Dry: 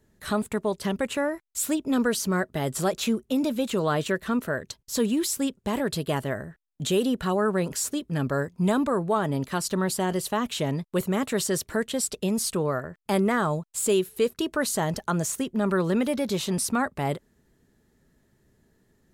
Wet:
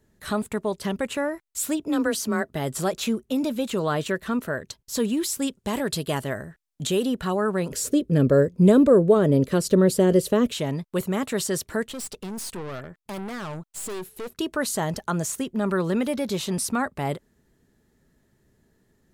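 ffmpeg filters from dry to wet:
-filter_complex "[0:a]asettb=1/sr,asplit=3[s0][s1][s2];[s0]atrim=end=1.804[s3];[s1]atrim=start=1.8:end=2.48,asetpts=PTS-STARTPTS,afade=t=in:d=0.004:c=qsin,afade=t=out:st=0.676:d=0.004:c=qsin,afreqshift=24[s4];[s2]atrim=start=2.476[s5];[s3][s4]acrossfade=d=0.004:c1=hsin:c2=qsin[s6];[s6][s5]acrossfade=d=0.004:c1=qsin:c2=hsin,asettb=1/sr,asplit=3[s7][s8][s9];[s7]atrim=end=5.424[s10];[s8]atrim=start=5.42:end=6.87,asetpts=PTS-STARTPTS,afade=t=in:d=0.004:c=qsin,afade=t=out:st=1.446:d=0.004:c=qsin,equalizer=f=7900:w=0.39:g=5[s11];[s9]atrim=start=6.866[s12];[s10][s11]acrossfade=d=0.004:c1=hsin:c2=qsin[s13];[s13][s12]acrossfade=d=0.004:c1=qsin:c2=hsin,asettb=1/sr,asplit=3[s14][s15][s16];[s14]atrim=end=7.724[s17];[s15]atrim=start=7.72:end=10.53,asetpts=PTS-STARTPTS,afade=t=in:d=0.004:c=qsin,afade=t=out:st=2.806:d=0.004:c=qsin,lowshelf=f=650:t=q:w=3:g=7[s18];[s16]atrim=start=10.526[s19];[s17][s18]acrossfade=d=0.004:c1=hsin:c2=qsin[s20];[s20][s19]acrossfade=d=0.004:c1=qsin:c2=hsin,asettb=1/sr,asplit=3[s21][s22][s23];[s21]atrim=end=11.884[s24];[s22]atrim=start=11.88:end=14.34,asetpts=PTS-STARTPTS,afade=t=in:d=0.004:c=qsin,afade=t=out:st=2.456:d=0.004:c=qsin,aeval=exprs='(tanh(35.5*val(0)+0.45)-tanh(0.45))/35.5':c=same[s25];[s23]atrim=start=14.336[s26];[s24][s25]acrossfade=d=0.004:c1=hsin:c2=qsin[s27];[s27][s26]acrossfade=d=0.004:c1=qsin:c2=hsin"

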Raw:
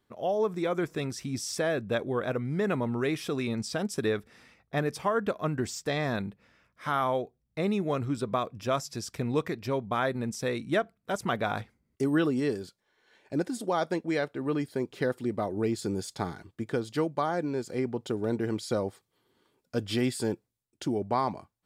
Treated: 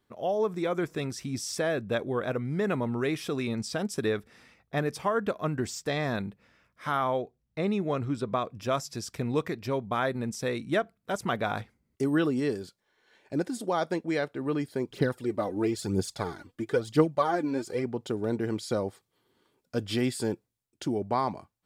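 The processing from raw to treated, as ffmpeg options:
-filter_complex "[0:a]asettb=1/sr,asplit=3[s0][s1][s2];[s0]atrim=end=6.974[s3];[s1]atrim=start=6.97:end=8.5,asetpts=PTS-STARTPTS,afade=t=in:d=0.004:c=qsin,afade=t=out:st=1.526:d=0.004:c=qsin,highshelf=f=8600:g=-10[s4];[s2]atrim=start=8.496[s5];[s3][s4]acrossfade=d=0.004:c1=hsin:c2=qsin[s6];[s6][s5]acrossfade=d=0.004:c1=qsin:c2=hsin,asplit=3[s7][s8][s9];[s7]afade=t=out:st=14.87:d=0.02[s10];[s8]aphaser=in_gain=1:out_gain=1:delay=4.2:decay=0.61:speed=1:type=triangular,afade=t=in:st=14.87:d=0.02,afade=t=out:st=17.82:d=0.02[s11];[s9]afade=t=in:st=17.82:d=0.02[s12];[s10][s11][s12]amix=inputs=3:normalize=0"

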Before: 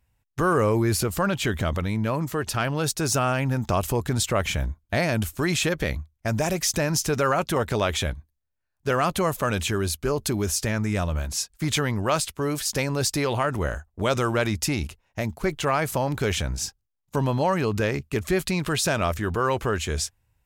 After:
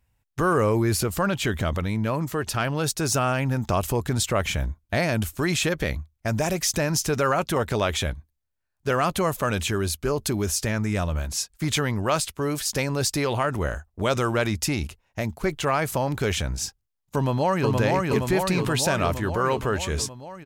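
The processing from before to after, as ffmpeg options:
-filter_complex "[0:a]asplit=2[s0][s1];[s1]afade=t=in:st=17.16:d=0.01,afade=t=out:st=17.73:d=0.01,aecho=0:1:470|940|1410|1880|2350|2820|3290|3760|4230|4700|5170|5640:0.841395|0.588977|0.412284|0.288599|0.202019|0.141413|0.0989893|0.0692925|0.0485048|0.0339533|0.0237673|0.0166371[s2];[s0][s2]amix=inputs=2:normalize=0"

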